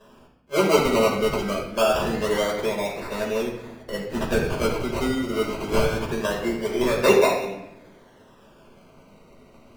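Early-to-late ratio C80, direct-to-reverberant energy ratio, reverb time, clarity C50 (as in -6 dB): 6.0 dB, -4.5 dB, 0.85 s, 4.0 dB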